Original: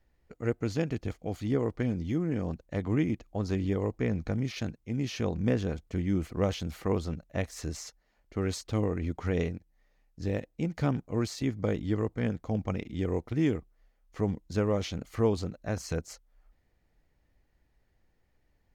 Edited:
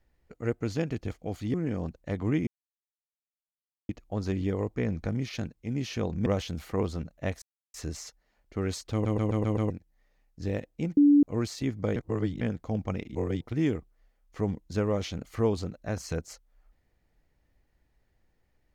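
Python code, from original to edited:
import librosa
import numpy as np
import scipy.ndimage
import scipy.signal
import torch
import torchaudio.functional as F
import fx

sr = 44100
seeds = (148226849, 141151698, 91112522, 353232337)

y = fx.edit(x, sr, fx.cut(start_s=1.54, length_s=0.65),
    fx.insert_silence(at_s=3.12, length_s=1.42),
    fx.cut(start_s=5.49, length_s=0.89),
    fx.insert_silence(at_s=7.54, length_s=0.32),
    fx.stutter_over(start_s=8.72, slice_s=0.13, count=6),
    fx.bleep(start_s=10.77, length_s=0.26, hz=289.0, db=-15.0),
    fx.reverse_span(start_s=11.76, length_s=0.45),
    fx.reverse_span(start_s=12.95, length_s=0.26), tone=tone)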